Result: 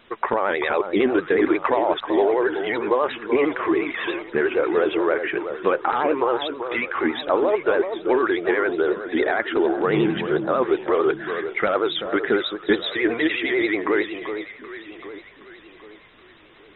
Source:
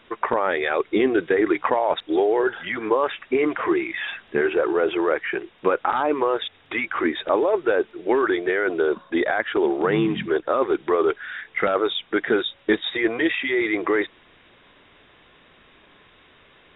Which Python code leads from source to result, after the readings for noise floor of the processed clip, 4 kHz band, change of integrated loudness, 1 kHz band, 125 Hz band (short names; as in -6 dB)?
-49 dBFS, n/a, +0.5 dB, +0.5 dB, +1.0 dB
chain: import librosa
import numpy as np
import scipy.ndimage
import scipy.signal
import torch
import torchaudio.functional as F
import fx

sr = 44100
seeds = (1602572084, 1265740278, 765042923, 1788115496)

y = fx.echo_alternate(x, sr, ms=386, hz=1300.0, feedback_pct=63, wet_db=-8)
y = fx.vibrato(y, sr, rate_hz=11.0, depth_cents=88.0)